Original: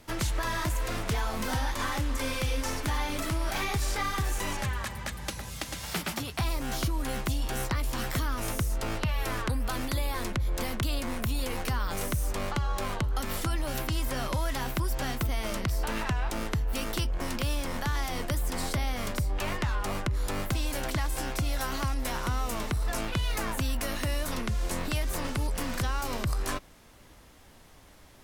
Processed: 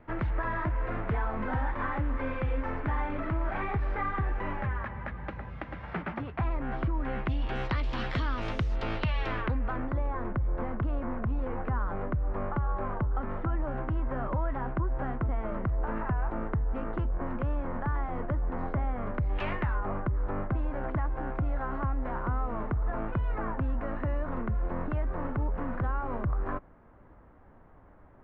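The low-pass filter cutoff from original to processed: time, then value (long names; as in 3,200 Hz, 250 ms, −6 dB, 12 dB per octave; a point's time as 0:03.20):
low-pass filter 24 dB per octave
0:06.95 1,900 Hz
0:07.76 3,700 Hz
0:09.20 3,700 Hz
0:09.89 1,500 Hz
0:19.13 1,500 Hz
0:19.38 3,100 Hz
0:19.84 1,500 Hz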